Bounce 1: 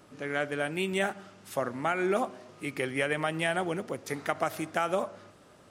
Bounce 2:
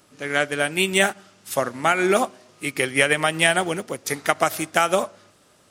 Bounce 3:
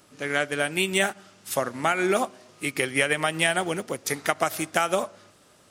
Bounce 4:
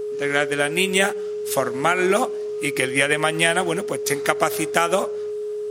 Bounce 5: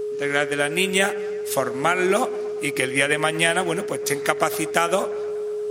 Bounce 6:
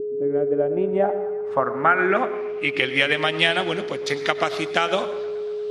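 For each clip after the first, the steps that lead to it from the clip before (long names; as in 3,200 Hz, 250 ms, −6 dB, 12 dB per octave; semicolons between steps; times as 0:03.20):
high-shelf EQ 2,700 Hz +11 dB; expander for the loud parts 1.5 to 1, over −47 dBFS; level +9 dB
downward compressor 1.5 to 1, threshold −26 dBFS, peak gain reduction 5.5 dB
steady tone 420 Hz −29 dBFS; level +4 dB
bucket-brigade delay 117 ms, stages 2,048, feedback 69%, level −20.5 dB; reversed playback; upward compression, threshold −23 dBFS; reversed playback; level −1 dB
low-pass filter sweep 330 Hz → 3,900 Hz, 0:00.13–0:03.06; on a send at −14 dB: convolution reverb RT60 0.55 s, pre-delay 88 ms; on the sum: level −2 dB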